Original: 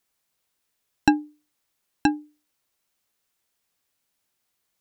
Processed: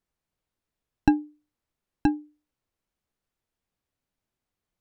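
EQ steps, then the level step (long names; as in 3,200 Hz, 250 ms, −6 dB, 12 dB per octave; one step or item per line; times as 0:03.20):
spectral tilt −3 dB per octave
−6.0 dB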